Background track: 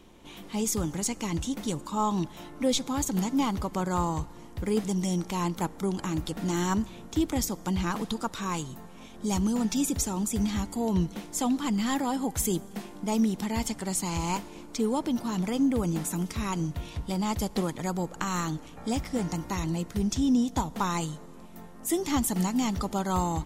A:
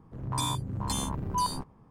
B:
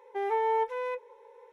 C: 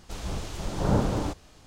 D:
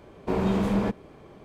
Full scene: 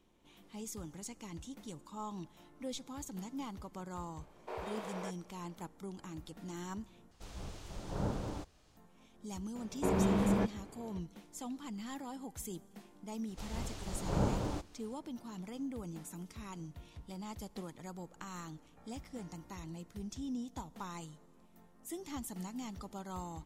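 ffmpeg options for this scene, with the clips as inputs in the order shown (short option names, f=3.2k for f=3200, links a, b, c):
-filter_complex "[4:a]asplit=2[a][b];[3:a]asplit=2[c][d];[0:a]volume=-16dB[e];[a]highpass=f=480:w=0.5412,highpass=f=480:w=1.3066[f];[e]asplit=2[g][h];[g]atrim=end=7.114[i];[c]atrim=end=1.66,asetpts=PTS-STARTPTS,volume=-12.5dB[j];[h]atrim=start=8.766[k];[f]atrim=end=1.44,asetpts=PTS-STARTPTS,volume=-11dB,afade=t=in:d=0.004:c=hsin,afade=t=out:st=1.436:d=0.004:c=hsin,adelay=4200[l];[b]atrim=end=1.44,asetpts=PTS-STARTPTS,volume=-5.5dB,afade=t=in:d=0.004:c=hsin,afade=t=out:st=1.436:d=0.004:c=hsin,adelay=9550[m];[d]atrim=end=1.66,asetpts=PTS-STARTPTS,volume=-8.5dB,afade=t=in:d=0.004:c=hsin,afade=t=out:st=1.656:d=0.004:c=hsin,adelay=13280[n];[i][j]acrossfade=d=0.004:c1=hsin:c2=hsin[o];[o][k]acrossfade=d=0.004:c1=hsin:c2=hsin[p];[p][l][m][n]amix=inputs=4:normalize=0"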